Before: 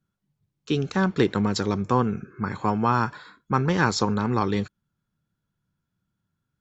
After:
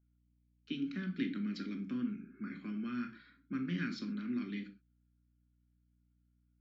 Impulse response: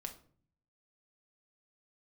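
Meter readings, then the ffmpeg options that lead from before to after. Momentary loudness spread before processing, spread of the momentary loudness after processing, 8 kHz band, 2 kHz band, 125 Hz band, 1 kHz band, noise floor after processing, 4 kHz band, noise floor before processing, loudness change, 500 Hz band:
7 LU, 7 LU, n/a, -16.0 dB, -19.0 dB, -29.5 dB, -74 dBFS, -16.0 dB, -81 dBFS, -15.0 dB, -25.5 dB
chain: -filter_complex "[0:a]acrossover=split=250|1400[a][b][c];[b]acompressor=threshold=-34dB:ratio=6[d];[a][d][c]amix=inputs=3:normalize=0,asplit=3[e][f][g];[e]bandpass=f=270:t=q:w=8,volume=0dB[h];[f]bandpass=f=2.29k:t=q:w=8,volume=-6dB[i];[g]bandpass=f=3.01k:t=q:w=8,volume=-9dB[j];[h][i][j]amix=inputs=3:normalize=0,highpass=f=160:w=0.5412,highpass=f=160:w=1.3066,equalizer=f=230:t=q:w=4:g=-6,equalizer=f=440:t=q:w=4:g=-9,equalizer=f=1.4k:t=q:w=4:g=6,equalizer=f=2.2k:t=q:w=4:g=-5,equalizer=f=3.4k:t=q:w=4:g=-8,lowpass=f=5.6k:w=0.5412,lowpass=f=5.6k:w=1.3066[k];[1:a]atrim=start_sample=2205,afade=t=out:st=0.19:d=0.01,atrim=end_sample=8820[l];[k][l]afir=irnorm=-1:irlink=0,aeval=exprs='val(0)+0.000112*(sin(2*PI*60*n/s)+sin(2*PI*2*60*n/s)/2+sin(2*PI*3*60*n/s)/3+sin(2*PI*4*60*n/s)/4+sin(2*PI*5*60*n/s)/5)':c=same,volume=7dB"

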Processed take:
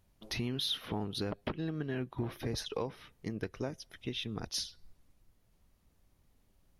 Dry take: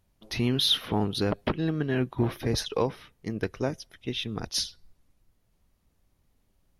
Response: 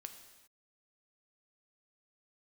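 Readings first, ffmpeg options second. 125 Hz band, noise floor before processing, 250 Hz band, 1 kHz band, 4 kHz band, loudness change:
-9.0 dB, -71 dBFS, -9.0 dB, -9.5 dB, -9.0 dB, -9.0 dB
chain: -af "acompressor=threshold=-37dB:ratio=2.5"

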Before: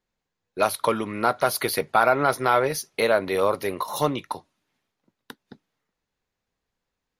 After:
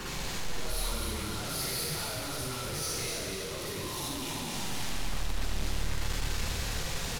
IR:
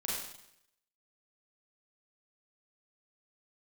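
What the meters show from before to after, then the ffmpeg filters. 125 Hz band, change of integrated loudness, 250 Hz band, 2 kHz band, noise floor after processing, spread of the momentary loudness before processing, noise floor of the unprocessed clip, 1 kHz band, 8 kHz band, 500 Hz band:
+0.5 dB, -11.0 dB, -8.0 dB, -9.5 dB, -37 dBFS, 8 LU, -83 dBFS, -16.0 dB, +1.5 dB, -16.5 dB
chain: -filter_complex "[0:a]aeval=exprs='val(0)+0.5*0.0668*sgn(val(0))':c=same,flanger=delay=0.7:depth=5.5:regen=-37:speed=0.8:shape=sinusoidal,acrossover=split=3100[a][b];[a]alimiter=limit=-20dB:level=0:latency=1[c];[c][b]amix=inputs=2:normalize=0[d];[1:a]atrim=start_sample=2205,asetrate=33075,aresample=44100[e];[d][e]afir=irnorm=-1:irlink=0,asoftclip=type=tanh:threshold=-25.5dB,asplit=2[f][g];[g]asplit=6[h][i][j][k][l][m];[h]adelay=246,afreqshift=-37,volume=-5dB[n];[i]adelay=492,afreqshift=-74,volume=-10.8dB[o];[j]adelay=738,afreqshift=-111,volume=-16.7dB[p];[k]adelay=984,afreqshift=-148,volume=-22.5dB[q];[l]adelay=1230,afreqshift=-185,volume=-28.4dB[r];[m]adelay=1476,afreqshift=-222,volume=-34.2dB[s];[n][o][p][q][r][s]amix=inputs=6:normalize=0[t];[f][t]amix=inputs=2:normalize=0,acrossover=split=170|3000[u][v][w];[v]acompressor=threshold=-37dB:ratio=6[x];[u][x][w]amix=inputs=3:normalize=0,highshelf=f=12k:g=-10,volume=-2dB"

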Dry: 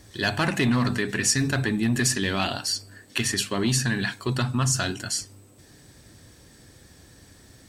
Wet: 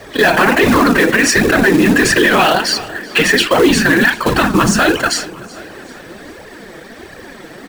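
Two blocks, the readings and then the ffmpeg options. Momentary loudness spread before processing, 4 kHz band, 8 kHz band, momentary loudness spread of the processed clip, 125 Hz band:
6 LU, +11.0 dB, +6.0 dB, 7 LU, +4.0 dB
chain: -filter_complex "[0:a]highshelf=f=2.3k:g=-2.5,afftfilt=real='hypot(re,im)*cos(2*PI*random(0))':imag='hypot(re,im)*sin(2*PI*random(1))':win_size=512:overlap=0.75,acontrast=45,acrossover=split=260 3100:gain=0.126 1 0.141[a][b][c];[a][b][c]amix=inputs=3:normalize=0,asoftclip=type=tanh:threshold=-20dB,acrusher=bits=4:mode=log:mix=0:aa=0.000001,flanger=delay=1.2:depth=5.3:regen=14:speed=1.4:shape=triangular,asplit=2[d][e];[e]aecho=0:1:382|764|1146:0.0794|0.0397|0.0199[f];[d][f]amix=inputs=2:normalize=0,alimiter=level_in=29dB:limit=-1dB:release=50:level=0:latency=1,volume=-1.5dB"

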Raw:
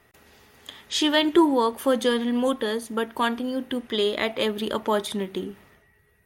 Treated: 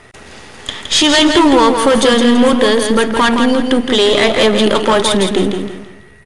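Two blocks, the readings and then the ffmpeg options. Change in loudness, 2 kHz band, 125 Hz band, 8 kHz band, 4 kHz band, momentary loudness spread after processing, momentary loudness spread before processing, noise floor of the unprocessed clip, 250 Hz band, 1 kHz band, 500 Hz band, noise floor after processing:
+13.0 dB, +14.0 dB, n/a, +17.0 dB, +14.5 dB, 9 LU, 11 LU, -62 dBFS, +12.5 dB, +13.0 dB, +12.5 dB, -40 dBFS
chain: -filter_complex "[0:a]aeval=exprs='if(lt(val(0),0),0.447*val(0),val(0))':c=same,apsyclip=26.5dB,asplit=2[a][b];[b]aecho=0:1:166|332|498|664:0.501|0.165|0.0546|0.018[c];[a][c]amix=inputs=2:normalize=0,aresample=22050,aresample=44100,volume=-6dB"

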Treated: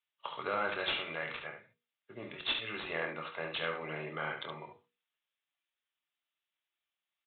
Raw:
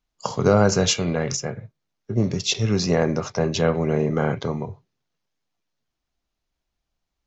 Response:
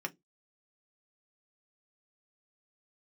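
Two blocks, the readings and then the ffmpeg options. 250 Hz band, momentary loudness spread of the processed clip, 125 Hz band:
-24.5 dB, 14 LU, -28.0 dB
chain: -filter_complex "[0:a]aderivative,bandreject=f=60:t=h:w=6,bandreject=f=120:t=h:w=6,bandreject=f=180:t=h:w=6,bandreject=f=240:t=h:w=6,bandreject=f=300:t=h:w=6,bandreject=f=360:t=h:w=6,bandreject=f=420:t=h:w=6,bandreject=f=480:t=h:w=6,aresample=16000,asoftclip=type=tanh:threshold=-28dB,aresample=44100,aecho=1:1:25|71:0.355|0.447,asplit=2[a][b];[1:a]atrim=start_sample=2205[c];[b][c]afir=irnorm=-1:irlink=0,volume=-5dB[d];[a][d]amix=inputs=2:normalize=0,aresample=8000,aresample=44100,volume=2.5dB"

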